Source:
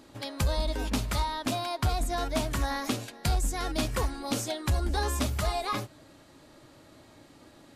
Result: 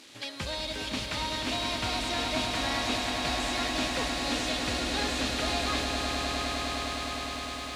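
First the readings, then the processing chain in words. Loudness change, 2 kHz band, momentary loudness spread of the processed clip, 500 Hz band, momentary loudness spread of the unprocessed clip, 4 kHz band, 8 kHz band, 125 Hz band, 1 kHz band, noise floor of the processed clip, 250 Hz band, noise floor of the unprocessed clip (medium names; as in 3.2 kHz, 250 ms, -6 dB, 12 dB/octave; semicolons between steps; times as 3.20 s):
+1.0 dB, +6.5 dB, 5 LU, 0.0 dB, 3 LU, +7.5 dB, +1.0 dB, -7.5 dB, +1.0 dB, -38 dBFS, +1.0 dB, -55 dBFS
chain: one-bit delta coder 64 kbps, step -47.5 dBFS; frequency weighting D; on a send: echo with a slow build-up 102 ms, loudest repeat 8, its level -8 dB; on the sum: bit-crushed delay 355 ms, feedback 80%, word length 8-bit, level -15 dB; trim -4 dB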